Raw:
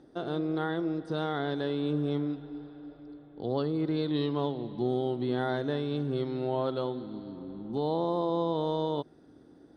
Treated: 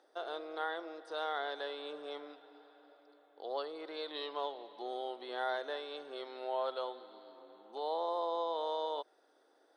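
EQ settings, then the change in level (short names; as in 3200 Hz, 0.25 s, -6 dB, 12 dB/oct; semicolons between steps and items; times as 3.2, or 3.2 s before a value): HPF 540 Hz 24 dB/oct; -2.0 dB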